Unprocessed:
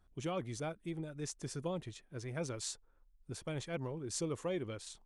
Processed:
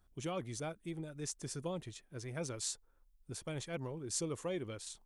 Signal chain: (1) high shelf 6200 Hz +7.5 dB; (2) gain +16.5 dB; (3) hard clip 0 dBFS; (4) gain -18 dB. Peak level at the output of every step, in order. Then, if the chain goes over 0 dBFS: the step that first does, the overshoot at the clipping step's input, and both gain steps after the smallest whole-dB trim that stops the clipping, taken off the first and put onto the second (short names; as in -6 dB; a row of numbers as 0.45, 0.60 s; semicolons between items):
-19.5, -3.0, -3.0, -21.0 dBFS; no overload